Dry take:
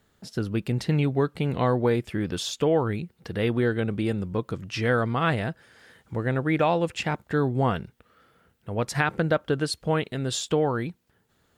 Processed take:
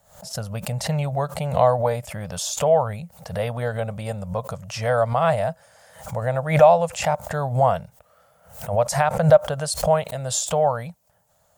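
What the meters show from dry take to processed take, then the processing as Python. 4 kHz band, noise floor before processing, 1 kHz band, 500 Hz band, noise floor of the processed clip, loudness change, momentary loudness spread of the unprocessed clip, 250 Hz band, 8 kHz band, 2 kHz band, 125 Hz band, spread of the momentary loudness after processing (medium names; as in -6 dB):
+1.0 dB, -67 dBFS, +7.5 dB, +6.5 dB, -62 dBFS, +4.5 dB, 10 LU, -4.5 dB, +9.5 dB, -1.5 dB, +2.0 dB, 14 LU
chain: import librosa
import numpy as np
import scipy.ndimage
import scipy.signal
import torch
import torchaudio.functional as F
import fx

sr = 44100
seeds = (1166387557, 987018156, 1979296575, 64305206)

y = fx.curve_eq(x, sr, hz=(170.0, 350.0, 590.0, 1600.0, 3700.0, 6700.0), db=(0, -24, 14, -3, -3, 9))
y = fx.pre_swell(y, sr, db_per_s=110.0)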